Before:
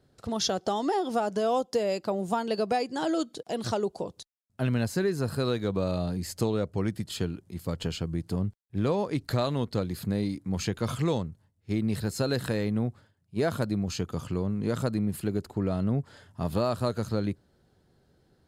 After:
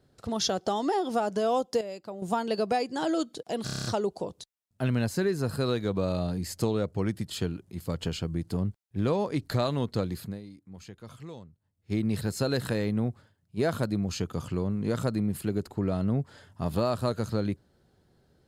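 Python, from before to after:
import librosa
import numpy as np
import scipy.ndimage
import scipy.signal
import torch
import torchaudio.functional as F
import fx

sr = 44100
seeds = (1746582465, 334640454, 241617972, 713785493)

y = fx.edit(x, sr, fx.clip_gain(start_s=1.81, length_s=0.41, db=-10.0),
    fx.stutter(start_s=3.64, slice_s=0.03, count=8),
    fx.fade_down_up(start_s=9.9, length_s=1.81, db=-16.0, fade_s=0.3), tone=tone)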